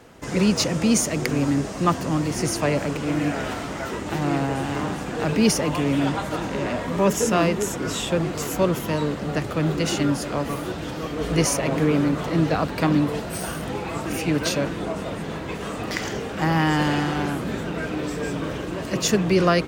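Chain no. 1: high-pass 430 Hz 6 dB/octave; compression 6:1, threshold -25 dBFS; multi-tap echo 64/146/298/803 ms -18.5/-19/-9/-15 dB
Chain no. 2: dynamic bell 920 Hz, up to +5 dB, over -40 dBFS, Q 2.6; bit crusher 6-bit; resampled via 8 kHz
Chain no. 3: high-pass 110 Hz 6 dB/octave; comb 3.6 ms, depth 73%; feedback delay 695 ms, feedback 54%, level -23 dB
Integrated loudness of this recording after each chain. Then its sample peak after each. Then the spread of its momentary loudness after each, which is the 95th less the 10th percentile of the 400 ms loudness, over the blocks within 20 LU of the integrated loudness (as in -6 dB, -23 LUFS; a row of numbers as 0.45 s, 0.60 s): -29.5 LUFS, -23.5 LUFS, -22.5 LUFS; -9.5 dBFS, -5.0 dBFS, -6.0 dBFS; 4 LU, 9 LU, 9 LU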